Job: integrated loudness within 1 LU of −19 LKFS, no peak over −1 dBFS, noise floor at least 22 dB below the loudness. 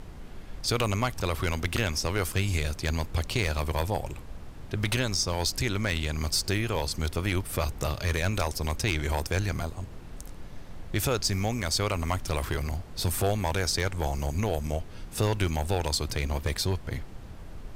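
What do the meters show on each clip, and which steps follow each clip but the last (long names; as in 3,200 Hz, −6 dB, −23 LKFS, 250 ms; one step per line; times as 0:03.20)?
share of clipped samples 0.4%; peaks flattened at −17.5 dBFS; background noise floor −43 dBFS; target noise floor −51 dBFS; integrated loudness −29.0 LKFS; sample peak −17.5 dBFS; target loudness −19.0 LKFS
→ clipped peaks rebuilt −17.5 dBFS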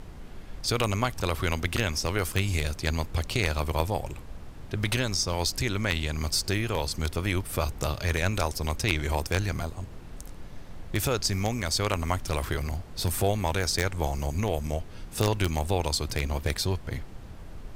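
share of clipped samples 0.0%; background noise floor −43 dBFS; target noise floor −51 dBFS
→ noise reduction from a noise print 8 dB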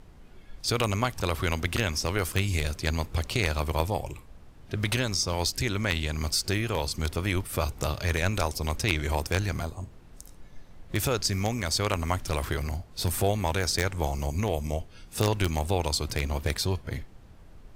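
background noise floor −50 dBFS; target noise floor −51 dBFS
→ noise reduction from a noise print 6 dB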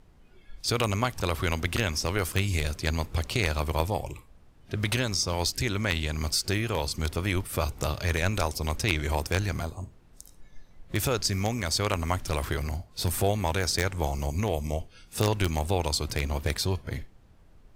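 background noise floor −55 dBFS; integrated loudness −28.5 LKFS; sample peak −8.5 dBFS; target loudness −19.0 LKFS
→ level +9.5 dB
brickwall limiter −1 dBFS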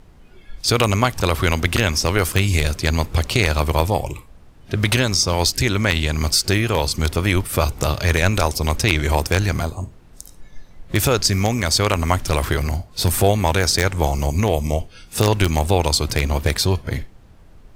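integrated loudness −19.5 LKFS; sample peak −1.0 dBFS; background noise floor −46 dBFS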